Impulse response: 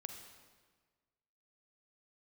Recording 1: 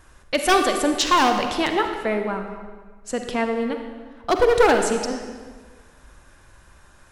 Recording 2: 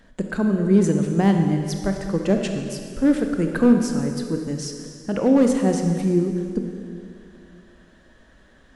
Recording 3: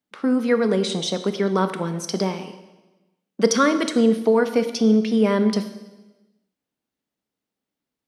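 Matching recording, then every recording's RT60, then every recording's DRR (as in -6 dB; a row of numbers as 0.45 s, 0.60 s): 1; 1.5 s, 2.4 s, 1.1 s; 5.0 dB, 4.0 dB, 9.0 dB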